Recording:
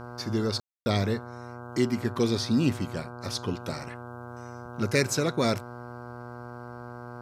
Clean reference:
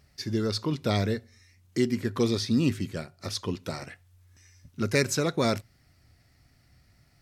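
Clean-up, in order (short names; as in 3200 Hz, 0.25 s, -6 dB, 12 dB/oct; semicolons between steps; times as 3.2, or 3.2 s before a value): de-hum 121 Hz, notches 13; room tone fill 0.6–0.86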